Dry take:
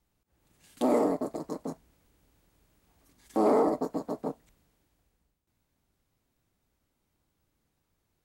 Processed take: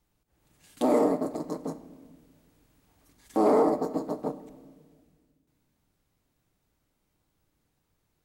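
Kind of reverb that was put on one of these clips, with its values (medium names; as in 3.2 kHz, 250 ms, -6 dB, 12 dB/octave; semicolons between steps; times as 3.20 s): simulated room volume 1800 m³, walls mixed, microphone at 0.47 m; trim +1.5 dB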